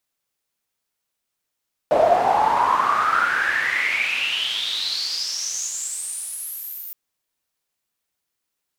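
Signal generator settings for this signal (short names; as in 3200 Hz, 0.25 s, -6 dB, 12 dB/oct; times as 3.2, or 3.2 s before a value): swept filtered noise pink, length 5.02 s bandpass, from 610 Hz, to 15000 Hz, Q 9.8, exponential, gain ramp -14.5 dB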